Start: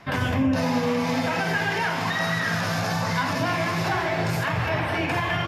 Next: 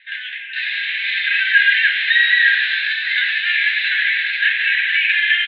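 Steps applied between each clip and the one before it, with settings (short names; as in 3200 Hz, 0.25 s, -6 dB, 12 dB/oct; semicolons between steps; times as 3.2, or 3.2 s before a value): Chebyshev band-pass 1600–4000 Hz, order 5; AGC gain up to 10 dB; gain +5 dB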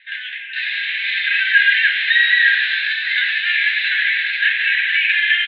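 nothing audible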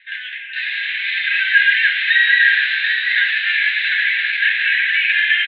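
air absorption 110 m; echo 0.737 s -7.5 dB; gain +1 dB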